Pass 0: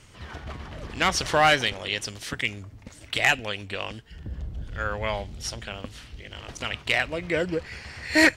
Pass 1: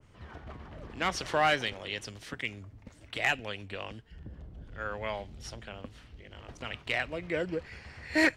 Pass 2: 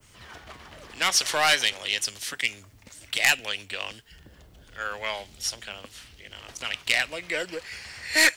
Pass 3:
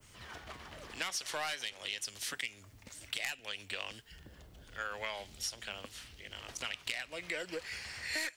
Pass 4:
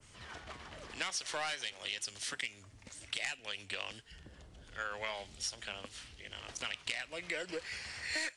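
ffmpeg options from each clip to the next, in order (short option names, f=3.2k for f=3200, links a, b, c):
-filter_complex "[0:a]highshelf=f=2.4k:g=-12,acrossover=split=170|1600[a][b][c];[a]alimiter=level_in=11dB:limit=-24dB:level=0:latency=1:release=341,volume=-11dB[d];[d][b][c]amix=inputs=3:normalize=0,adynamicequalizer=threshold=0.0126:dfrequency=1700:dqfactor=0.7:tfrequency=1700:tqfactor=0.7:attack=5:release=100:ratio=0.375:range=2.5:mode=boostabove:tftype=highshelf,volume=-5.5dB"
-filter_complex "[0:a]acrossover=split=330[a][b];[a]acompressor=threshold=-50dB:ratio=6[c];[b]aeval=exprs='(tanh(7.94*val(0)+0.3)-tanh(0.3))/7.94':c=same[d];[c][d]amix=inputs=2:normalize=0,crystalizer=i=9:c=0"
-af "acompressor=threshold=-31dB:ratio=8,volume=-3.5dB"
-ar 22050 -c:a aac -b:a 64k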